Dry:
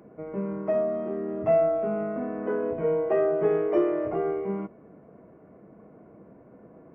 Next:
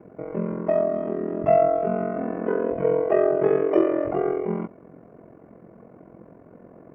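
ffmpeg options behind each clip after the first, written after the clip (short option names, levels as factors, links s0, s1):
-af "aeval=exprs='val(0)*sin(2*PI*22*n/s)':c=same,volume=2.11"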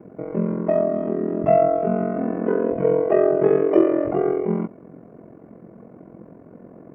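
-af "equalizer=f=220:t=o:w=2.1:g=5.5"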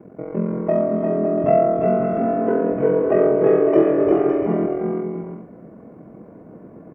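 -af "aecho=1:1:350|560|686|761.6|807:0.631|0.398|0.251|0.158|0.1"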